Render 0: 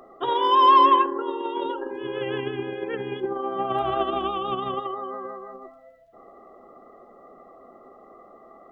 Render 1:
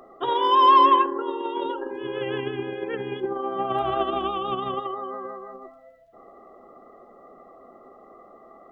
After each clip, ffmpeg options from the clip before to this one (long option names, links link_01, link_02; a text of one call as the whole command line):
ffmpeg -i in.wav -af anull out.wav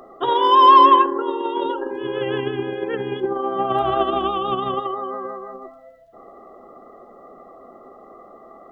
ffmpeg -i in.wav -af "equalizer=frequency=2300:width_type=o:width=0.39:gain=-5,volume=5dB" out.wav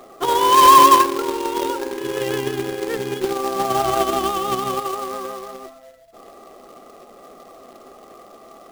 ffmpeg -i in.wav -af "acrusher=bits=2:mode=log:mix=0:aa=0.000001" out.wav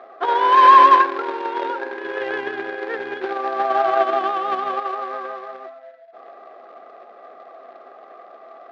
ffmpeg -i in.wav -af "highpass=440,equalizer=frequency=690:width_type=q:width=4:gain=7,equalizer=frequency=1600:width_type=q:width=4:gain=9,equalizer=frequency=3000:width_type=q:width=4:gain=-6,lowpass=frequency=3400:width=0.5412,lowpass=frequency=3400:width=1.3066,volume=-1dB" out.wav